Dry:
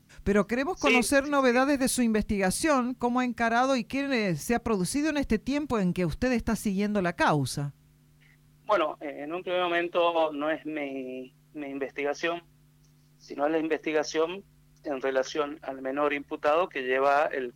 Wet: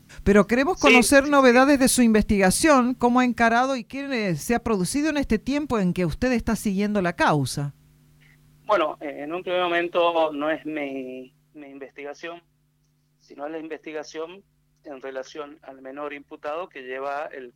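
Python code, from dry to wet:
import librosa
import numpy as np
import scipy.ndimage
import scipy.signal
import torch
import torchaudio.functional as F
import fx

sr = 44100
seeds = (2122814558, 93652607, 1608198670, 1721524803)

y = fx.gain(x, sr, db=fx.line((3.47, 7.5), (3.86, -4.0), (4.33, 4.0), (10.96, 4.0), (11.7, -6.0)))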